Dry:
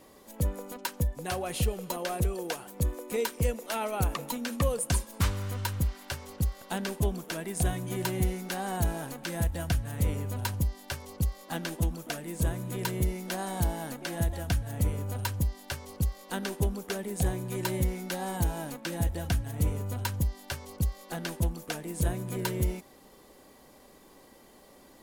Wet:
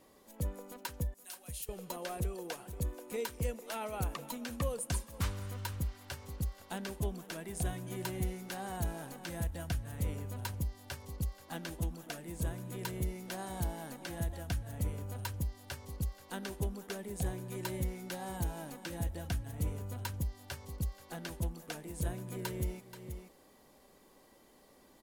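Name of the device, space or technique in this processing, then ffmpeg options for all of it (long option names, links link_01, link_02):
ducked delay: -filter_complex "[0:a]asettb=1/sr,asplit=3[link_01][link_02][link_03];[link_01]atrim=end=1.144[link_04];[link_02]atrim=start=1.14:end=1.69,asetpts=PTS-STARTPTS,afade=type=in:duration=0.004:curve=qsin,afade=type=out:start_time=0.546:duration=0.004:curve=qsin,aderivative[link_05];[link_03]atrim=start=1.686[link_06];[link_04][link_05]acrossfade=duration=0.004:curve1=hsin:curve2=qsin[link_07];[link_07][link_06]acrossfade=duration=0.004:curve1=qsin:curve2=hsin,asplit=3[link_08][link_09][link_10];[link_09]adelay=481,volume=-8.5dB[link_11];[link_10]apad=whole_len=1124815[link_12];[link_11][link_12]sidechaincompress=threshold=-42dB:ratio=8:attack=47:release=283[link_13];[link_08][link_13]amix=inputs=2:normalize=0,volume=-7.5dB"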